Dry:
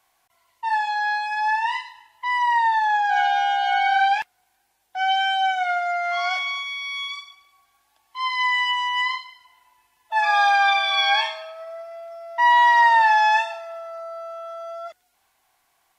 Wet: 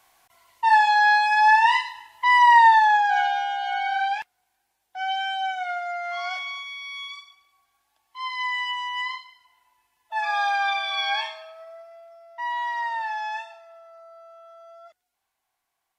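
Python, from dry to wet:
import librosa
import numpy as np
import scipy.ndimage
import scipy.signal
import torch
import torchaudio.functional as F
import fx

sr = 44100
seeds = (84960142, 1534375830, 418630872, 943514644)

y = fx.gain(x, sr, db=fx.line((2.67, 6.0), (3.48, -6.0), (11.56, -6.0), (12.46, -13.0)))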